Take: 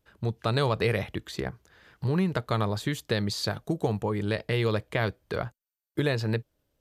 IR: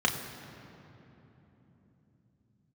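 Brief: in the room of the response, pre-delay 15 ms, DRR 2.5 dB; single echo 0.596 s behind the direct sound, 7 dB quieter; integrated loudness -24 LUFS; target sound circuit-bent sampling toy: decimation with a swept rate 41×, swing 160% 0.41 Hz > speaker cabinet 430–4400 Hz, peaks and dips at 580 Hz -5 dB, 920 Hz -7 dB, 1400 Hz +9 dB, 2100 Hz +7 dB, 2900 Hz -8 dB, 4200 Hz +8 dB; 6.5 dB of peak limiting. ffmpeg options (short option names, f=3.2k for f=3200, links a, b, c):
-filter_complex "[0:a]alimiter=limit=-20dB:level=0:latency=1,aecho=1:1:596:0.447,asplit=2[a][b];[1:a]atrim=start_sample=2205,adelay=15[c];[b][c]afir=irnorm=-1:irlink=0,volume=-14dB[d];[a][d]amix=inputs=2:normalize=0,acrusher=samples=41:mix=1:aa=0.000001:lfo=1:lforange=65.6:lforate=0.41,highpass=430,equalizer=f=580:t=q:w=4:g=-5,equalizer=f=920:t=q:w=4:g=-7,equalizer=f=1.4k:t=q:w=4:g=9,equalizer=f=2.1k:t=q:w=4:g=7,equalizer=f=2.9k:t=q:w=4:g=-8,equalizer=f=4.2k:t=q:w=4:g=8,lowpass=f=4.4k:w=0.5412,lowpass=f=4.4k:w=1.3066,volume=9.5dB"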